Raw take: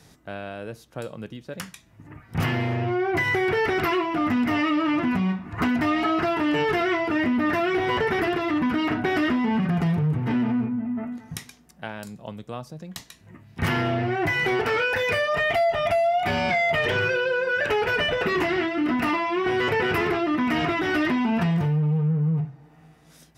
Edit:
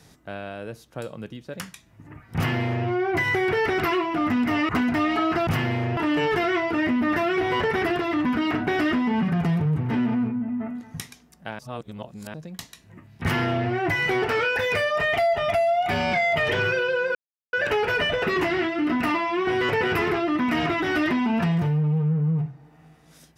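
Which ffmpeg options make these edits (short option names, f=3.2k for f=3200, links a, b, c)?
-filter_complex "[0:a]asplit=7[a][b][c][d][e][f][g];[a]atrim=end=4.692[h];[b]atrim=start=5.558:end=6.342[i];[c]atrim=start=2.358:end=2.862[j];[d]atrim=start=6.338:end=11.962[k];[e]atrim=start=11.958:end=12.712,asetpts=PTS-STARTPTS,areverse[l];[f]atrim=start=12.708:end=17.52,asetpts=PTS-STARTPTS,afade=t=out:st=4.808:d=0.004:c=hsin,apad=pad_dur=0.38[m];[g]atrim=start=17.52,asetpts=PTS-STARTPTS,afade=t=in:d=0.004:c=hsin[n];[h][i]acrossfade=d=0.004:c1=hsin:c2=hsin[o];[o][j]acrossfade=d=0.004:c1=hsin:c2=hsin[p];[p][k]acrossfade=d=0.004:c1=hsin:c2=hsin[q];[q][l]acrossfade=d=0.004:c1=hsin:c2=hsin[r];[m][n]concat=n=2:v=0:a=1[s];[r][s]acrossfade=d=0.004:c1=hsin:c2=hsin"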